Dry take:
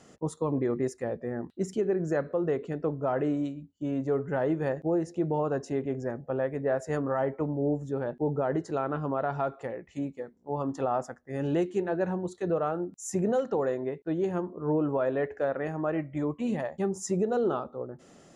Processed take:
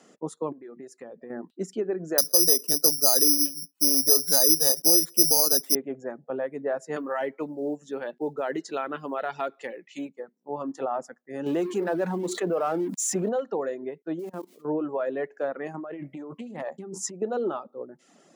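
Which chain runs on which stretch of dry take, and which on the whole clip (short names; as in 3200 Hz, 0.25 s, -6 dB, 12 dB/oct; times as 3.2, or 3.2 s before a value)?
0.52–1.3 compressor, threshold -37 dBFS + short-mantissa float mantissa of 8-bit
2.18–5.75 high shelf 2300 Hz -5.5 dB + careless resampling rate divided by 8×, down none, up zero stuff + three-band squash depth 40%
6.96–10.09 weighting filter D + short-mantissa float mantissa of 6-bit
11.46–13.29 G.711 law mismatch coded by mu + fast leveller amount 70%
14.19–14.65 switching spikes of -33 dBFS + high shelf 2200 Hz -5.5 dB + level quantiser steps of 16 dB
15.74–17.22 low shelf 220 Hz +4.5 dB + negative-ratio compressor -34 dBFS + Doppler distortion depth 0.2 ms
whole clip: reverb removal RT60 0.67 s; HPF 190 Hz 24 dB/oct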